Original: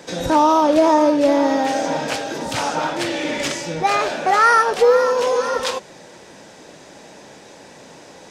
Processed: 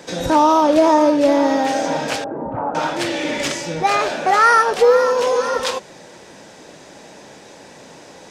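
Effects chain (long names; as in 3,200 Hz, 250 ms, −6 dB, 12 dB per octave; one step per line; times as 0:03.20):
0:02.24–0:02.75: low-pass filter 1,100 Hz 24 dB per octave
level +1 dB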